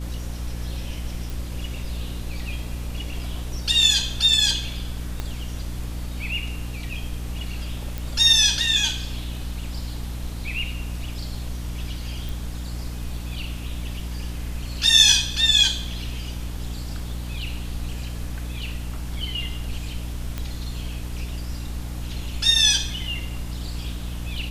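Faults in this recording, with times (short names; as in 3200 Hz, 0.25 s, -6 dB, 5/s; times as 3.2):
hum 60 Hz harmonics 5 -31 dBFS
1.3 pop
5.2 pop -15 dBFS
7.98 pop
12.29 pop
20.38 pop -15 dBFS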